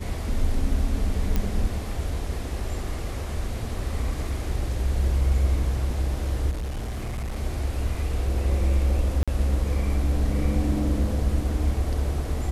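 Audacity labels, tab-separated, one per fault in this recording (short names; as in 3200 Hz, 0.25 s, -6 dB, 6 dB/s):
1.360000	1.360000	pop -12 dBFS
6.500000	7.360000	clipped -26.5 dBFS
9.230000	9.280000	gap 46 ms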